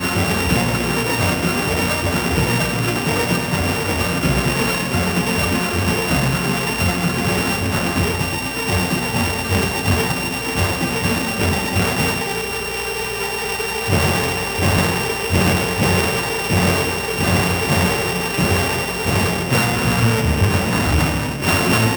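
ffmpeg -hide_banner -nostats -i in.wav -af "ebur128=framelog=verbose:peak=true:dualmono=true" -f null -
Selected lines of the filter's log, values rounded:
Integrated loudness:
  I:         -15.1 LUFS
  Threshold: -25.1 LUFS
Loudness range:
  LRA:         2.0 LU
  Threshold: -35.2 LUFS
  LRA low:   -16.3 LUFS
  LRA high:  -14.3 LUFS
True peak:
  Peak:       -1.9 dBFS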